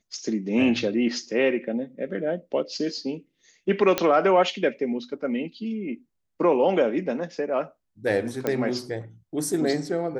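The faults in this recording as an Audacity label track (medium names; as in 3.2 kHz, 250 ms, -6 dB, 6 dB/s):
3.980000	3.980000	pop -6 dBFS
8.470000	8.470000	pop -12 dBFS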